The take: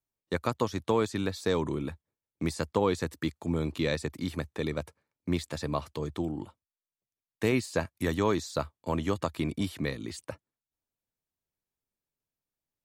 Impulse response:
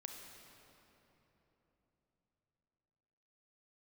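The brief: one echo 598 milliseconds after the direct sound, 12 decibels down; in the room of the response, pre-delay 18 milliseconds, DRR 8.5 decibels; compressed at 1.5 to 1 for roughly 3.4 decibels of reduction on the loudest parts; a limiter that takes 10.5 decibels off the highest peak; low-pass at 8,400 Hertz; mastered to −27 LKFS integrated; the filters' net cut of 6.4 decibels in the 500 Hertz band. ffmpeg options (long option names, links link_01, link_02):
-filter_complex "[0:a]lowpass=8400,equalizer=frequency=500:width_type=o:gain=-8,acompressor=threshold=-34dB:ratio=1.5,alimiter=level_in=4dB:limit=-24dB:level=0:latency=1,volume=-4dB,aecho=1:1:598:0.251,asplit=2[link_01][link_02];[1:a]atrim=start_sample=2205,adelay=18[link_03];[link_02][link_03]afir=irnorm=-1:irlink=0,volume=-5dB[link_04];[link_01][link_04]amix=inputs=2:normalize=0,volume=13.5dB"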